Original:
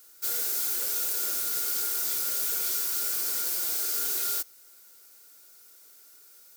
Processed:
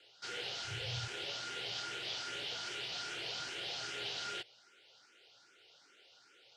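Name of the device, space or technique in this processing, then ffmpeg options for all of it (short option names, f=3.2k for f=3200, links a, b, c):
barber-pole phaser into a guitar amplifier: -filter_complex "[0:a]asplit=2[a][b];[b]afreqshift=2.5[c];[a][c]amix=inputs=2:normalize=1,asoftclip=type=tanh:threshold=-31.5dB,highpass=100,equalizer=f=120:t=q:w=4:g=10,equalizer=f=240:t=q:w=4:g=-8,equalizer=f=740:t=q:w=4:g=3,equalizer=f=1.1k:t=q:w=4:g=-8,equalizer=f=3k:t=q:w=4:g=9,lowpass=f=4.4k:w=0.5412,lowpass=f=4.4k:w=1.3066,asettb=1/sr,asplit=3[d][e][f];[d]atrim=end=0.644[g];[e]atrim=start=0.64:end=1.08,asetpts=PTS-STARTPTS,afade=t=in:d=0.004:c=qsin,afade=t=out:st=0.436:d=0.004:c=qsin,lowshelf=f=160:t=q:w=3:g=12.5[h];[f]atrim=start=1.076[i];[g][h]acrossfade=d=0.004:c1=hsin:c2=qsin[j];[j][i]acrossfade=d=0.004:c1=qsin:c2=hsin,volume=4.5dB"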